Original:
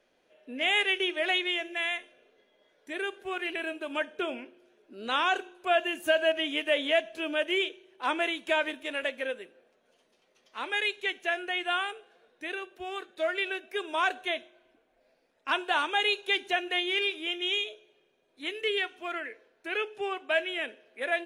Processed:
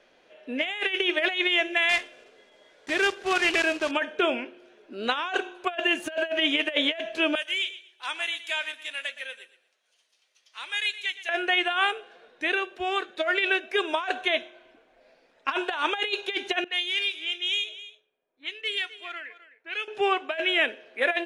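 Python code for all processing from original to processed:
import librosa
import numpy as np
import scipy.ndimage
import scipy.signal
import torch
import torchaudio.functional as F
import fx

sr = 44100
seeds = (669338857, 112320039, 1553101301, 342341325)

y = fx.chain(x, sr, fx.block_float(bits=3),
    fx.lowpass(hz=9800.0, slope=12), at=(1.89, 3.93))
y = fx.chain(y, sr, fx.differentiator(),
    fx.echo_feedback(ms=118, feedback_pct=23, wet_db=-14.0), at=(7.35, 11.29))
y = fx.chain(y, sr, fx.env_lowpass(base_hz=970.0, full_db=-26.0),
    fx.pre_emphasis(coefficient=0.9),
    fx.echo_single(ms=258, db=-15.5), at=(16.64, 19.88))
y = scipy.signal.sosfilt(scipy.signal.bessel(2, 5500.0, 'lowpass', norm='mag', fs=sr, output='sos'), y)
y = fx.low_shelf(y, sr, hz=500.0, db=-5.5)
y = fx.over_compress(y, sr, threshold_db=-32.0, ratio=-0.5)
y = F.gain(torch.from_numpy(y), 8.5).numpy()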